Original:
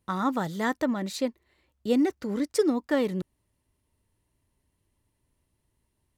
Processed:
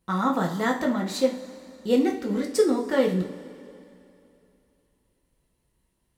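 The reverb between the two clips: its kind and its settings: two-slope reverb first 0.36 s, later 2.8 s, from -18 dB, DRR -0.5 dB

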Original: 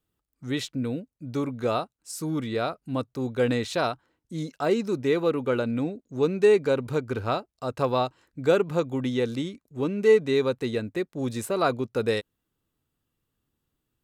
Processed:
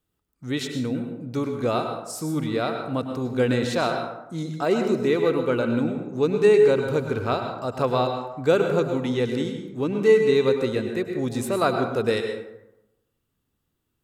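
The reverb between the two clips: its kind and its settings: plate-style reverb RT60 0.91 s, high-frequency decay 0.5×, pre-delay 90 ms, DRR 4.5 dB; gain +1.5 dB

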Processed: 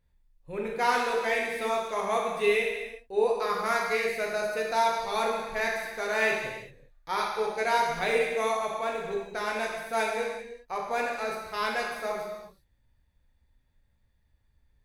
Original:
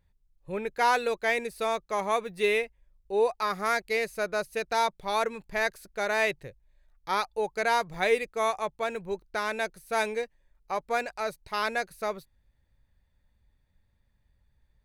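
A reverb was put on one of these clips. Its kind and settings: non-linear reverb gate 0.42 s falling, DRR -2.5 dB; gain -4 dB

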